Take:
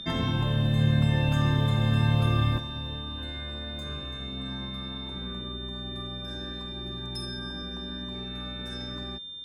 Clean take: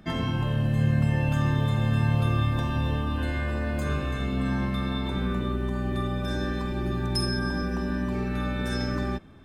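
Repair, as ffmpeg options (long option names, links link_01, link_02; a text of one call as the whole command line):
ffmpeg -i in.wav -af "bandreject=frequency=3600:width=30,asetnsamples=nb_out_samples=441:pad=0,asendcmd='2.58 volume volume 10dB',volume=0dB" out.wav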